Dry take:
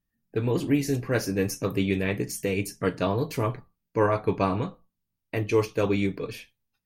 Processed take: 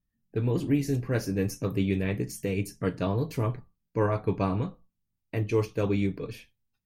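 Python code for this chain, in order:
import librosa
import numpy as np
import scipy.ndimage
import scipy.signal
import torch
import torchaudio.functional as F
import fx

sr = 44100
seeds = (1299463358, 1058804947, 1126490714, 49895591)

y = fx.low_shelf(x, sr, hz=270.0, db=8.5)
y = F.gain(torch.from_numpy(y), -6.0).numpy()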